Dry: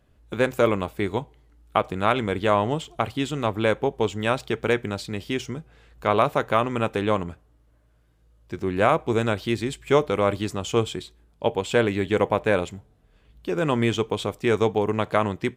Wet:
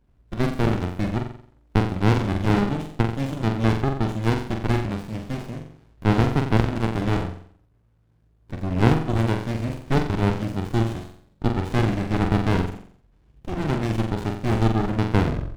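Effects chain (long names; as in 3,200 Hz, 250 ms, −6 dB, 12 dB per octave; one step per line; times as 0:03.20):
turntable brake at the end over 0.41 s
flutter between parallel walls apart 7.6 metres, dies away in 0.57 s
windowed peak hold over 65 samples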